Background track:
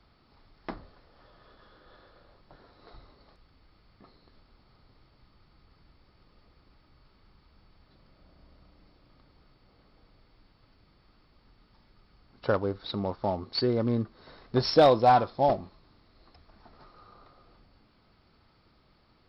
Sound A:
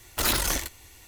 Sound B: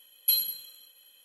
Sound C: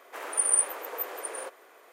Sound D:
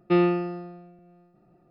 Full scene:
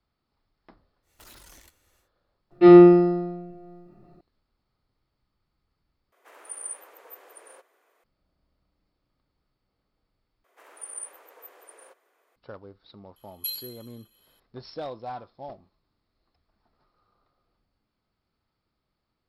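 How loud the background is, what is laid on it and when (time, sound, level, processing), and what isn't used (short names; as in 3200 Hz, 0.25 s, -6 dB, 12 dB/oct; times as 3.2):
background track -16.5 dB
1.02 add A -18 dB, fades 0.10 s + compressor 3:1, threshold -31 dBFS
2.51 add D -3 dB + shoebox room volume 130 m³, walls furnished, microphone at 3.1 m
6.12 replace with C -13 dB
10.44 replace with C -14.5 dB
13.16 add B -8 dB + comb 6.3 ms, depth 30%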